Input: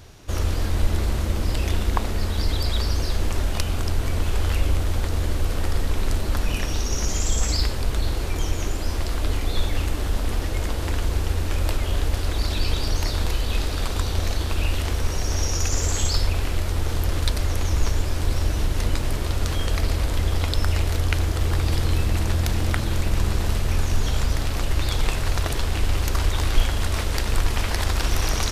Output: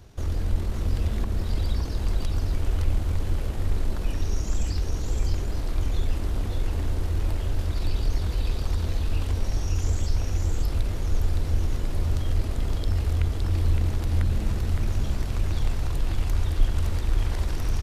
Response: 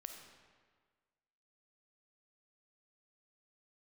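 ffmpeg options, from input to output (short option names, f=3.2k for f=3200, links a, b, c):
-filter_complex "[0:a]tiltshelf=f=720:g=3.5,bandreject=f=60:t=h:w=6,bandreject=f=120:t=h:w=6,bandreject=f=180:t=h:w=6,bandreject=f=240:t=h:w=6,bandreject=f=300:t=h:w=6,bandreject=f=360:t=h:w=6,bandreject=f=420:t=h:w=6,bandreject=f=480:t=h:w=6,bandreject=f=540:t=h:w=6,bandreject=f=600:t=h:w=6,acrossover=split=330[a][b];[b]acompressor=threshold=-32dB:ratio=4[c];[a][c]amix=inputs=2:normalize=0,asplit=2[d][e];[e]volume=21dB,asoftclip=hard,volume=-21dB,volume=-12dB[f];[d][f]amix=inputs=2:normalize=0,atempo=1.6,asplit=2[g][h];[h]aecho=0:1:564:0.668[i];[g][i]amix=inputs=2:normalize=0,volume=-7dB"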